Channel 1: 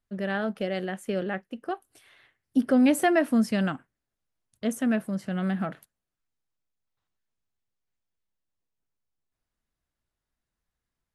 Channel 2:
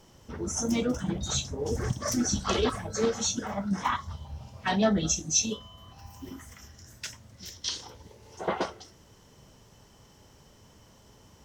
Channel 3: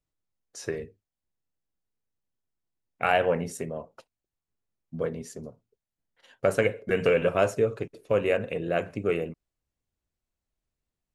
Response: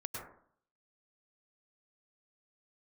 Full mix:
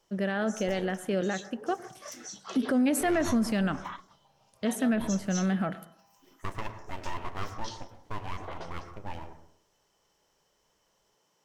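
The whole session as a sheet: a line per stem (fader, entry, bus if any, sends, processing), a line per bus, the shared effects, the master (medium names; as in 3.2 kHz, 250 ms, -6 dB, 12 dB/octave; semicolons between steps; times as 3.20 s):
+1.0 dB, 0.00 s, send -16.5 dB, none
-12.0 dB, 0.00 s, no send, high-pass 190 Hz 24 dB/octave; peaking EQ 240 Hz -14.5 dB 0.64 oct
-12.0 dB, 0.00 s, send -6 dB, treble shelf 3.1 kHz -11.5 dB; full-wave rectifier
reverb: on, RT60 0.55 s, pre-delay 92 ms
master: peak limiter -19 dBFS, peak gain reduction 8.5 dB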